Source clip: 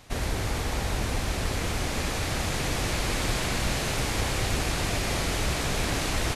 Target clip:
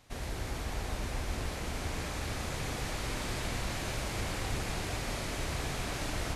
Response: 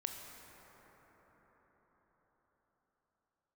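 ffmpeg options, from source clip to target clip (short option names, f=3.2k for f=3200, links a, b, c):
-filter_complex "[1:a]atrim=start_sample=2205[a];[0:a][a]afir=irnorm=-1:irlink=0,volume=-7.5dB"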